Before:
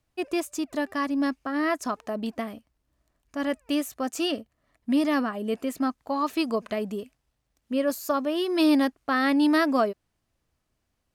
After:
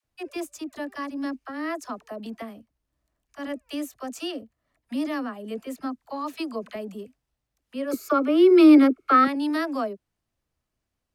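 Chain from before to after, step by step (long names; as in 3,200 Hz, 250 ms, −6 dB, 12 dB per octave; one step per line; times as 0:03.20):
0:07.90–0:09.24: hollow resonant body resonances 380/1,300/2,200 Hz, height 18 dB, ringing for 20 ms
all-pass dispersion lows, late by 44 ms, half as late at 540 Hz
level −5 dB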